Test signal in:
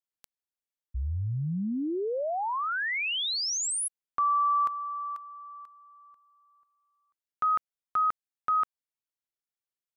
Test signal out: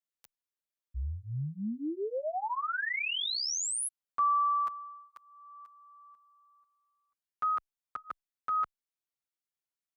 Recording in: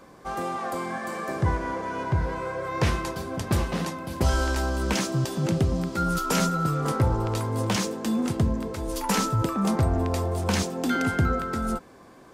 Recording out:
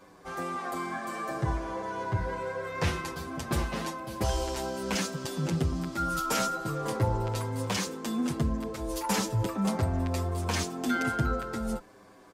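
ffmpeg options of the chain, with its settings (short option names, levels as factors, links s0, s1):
-filter_complex "[0:a]lowshelf=f=410:g=-3,asplit=2[s0][s1];[s1]adelay=7.6,afreqshift=-0.41[s2];[s0][s2]amix=inputs=2:normalize=1"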